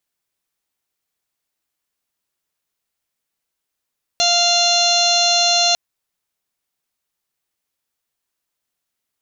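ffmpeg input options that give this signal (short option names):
-f lavfi -i "aevalsrc='0.112*sin(2*PI*696*t)+0.0316*sin(2*PI*1392*t)+0.0158*sin(2*PI*2088*t)+0.0794*sin(2*PI*2784*t)+0.075*sin(2*PI*3480*t)+0.15*sin(2*PI*4176*t)+0.0178*sin(2*PI*4872*t)+0.0631*sin(2*PI*5568*t)+0.0708*sin(2*PI*6264*t)+0.0355*sin(2*PI*6960*t)':d=1.55:s=44100"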